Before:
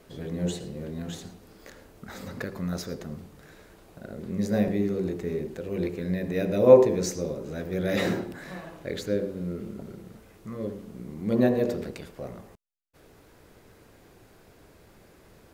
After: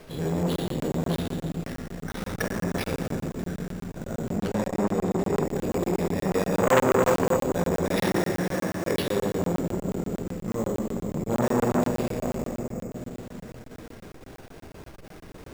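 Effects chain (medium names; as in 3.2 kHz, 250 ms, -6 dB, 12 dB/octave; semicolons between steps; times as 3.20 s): in parallel at -3 dB: compressor with a negative ratio -32 dBFS, ratio -0.5; 8.02–8.94 s: on the sum: high-pass 130 Hz; simulated room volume 190 m³, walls hard, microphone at 0.52 m; sample-and-hold 6×; 4.38–5.43 s: treble shelf 11 kHz -7.5 dB; crackling interface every 0.12 s, samples 1024, zero, from 0.56 s; transformer saturation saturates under 1.5 kHz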